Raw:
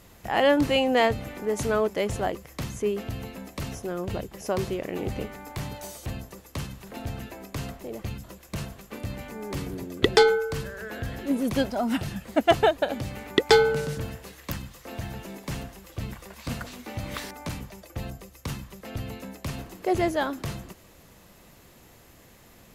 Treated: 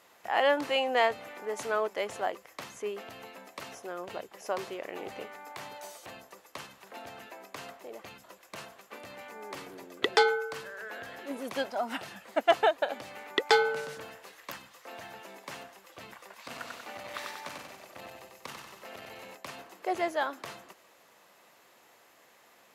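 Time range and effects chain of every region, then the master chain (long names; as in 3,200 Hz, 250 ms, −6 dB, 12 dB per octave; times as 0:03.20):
0:16.45–0:19.35: repeating echo 94 ms, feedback 54%, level −3.5 dB + saturating transformer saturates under 240 Hz
whole clip: high-pass filter 800 Hz 12 dB per octave; spectral tilt −2.5 dB per octave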